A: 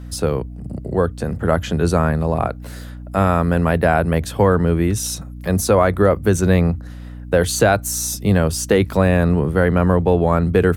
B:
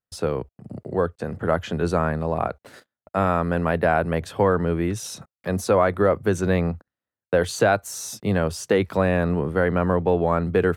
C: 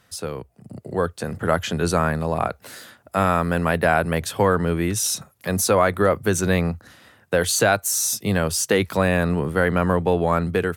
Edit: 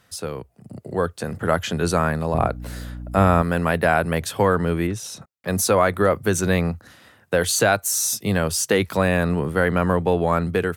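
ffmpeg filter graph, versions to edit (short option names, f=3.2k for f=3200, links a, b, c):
-filter_complex "[2:a]asplit=3[a][b][c];[a]atrim=end=2.342[d];[0:a]atrim=start=2.338:end=3.422[e];[b]atrim=start=3.418:end=4.872[f];[1:a]atrim=start=4.868:end=5.482[g];[c]atrim=start=5.478[h];[d][e]acrossfade=d=0.004:c1=hsin:c2=hsin[i];[i][f]acrossfade=d=0.004:c1=hsin:c2=hsin[j];[j][g]acrossfade=d=0.004:c1=hsin:c2=hsin[k];[k][h]acrossfade=d=0.004:c1=hsin:c2=hsin"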